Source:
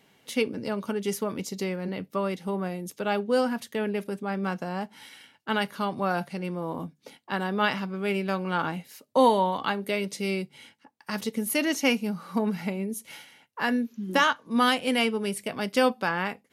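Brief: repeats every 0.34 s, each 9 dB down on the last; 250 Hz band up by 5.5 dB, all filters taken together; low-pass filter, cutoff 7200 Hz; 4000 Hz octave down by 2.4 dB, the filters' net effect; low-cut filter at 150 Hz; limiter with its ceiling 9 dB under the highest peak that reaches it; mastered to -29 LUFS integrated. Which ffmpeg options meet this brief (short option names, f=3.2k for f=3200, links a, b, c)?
-af "highpass=150,lowpass=7.2k,equalizer=f=250:t=o:g=7.5,equalizer=f=4k:t=o:g=-3.5,alimiter=limit=-15dB:level=0:latency=1,aecho=1:1:340|680|1020|1360:0.355|0.124|0.0435|0.0152,volume=-2dB"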